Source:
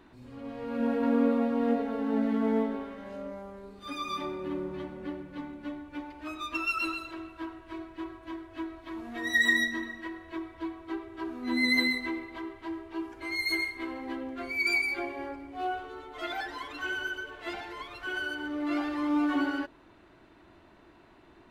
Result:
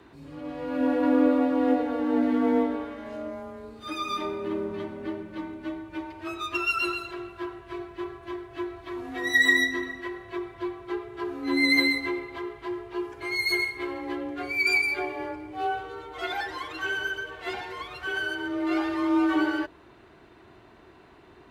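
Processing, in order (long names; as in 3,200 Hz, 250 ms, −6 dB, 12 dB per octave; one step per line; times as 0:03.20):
frequency shifter +28 Hz
level +4 dB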